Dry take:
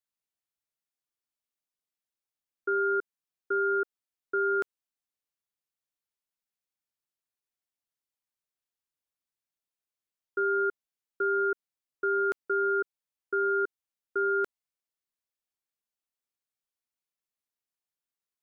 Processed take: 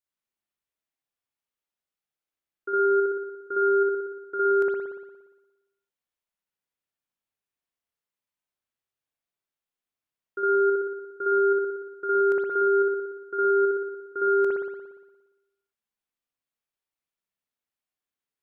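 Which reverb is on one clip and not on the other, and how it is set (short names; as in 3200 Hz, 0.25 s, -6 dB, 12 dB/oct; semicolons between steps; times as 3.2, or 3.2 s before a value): spring tank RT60 1.1 s, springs 58 ms, chirp 50 ms, DRR -4.5 dB; gain -3 dB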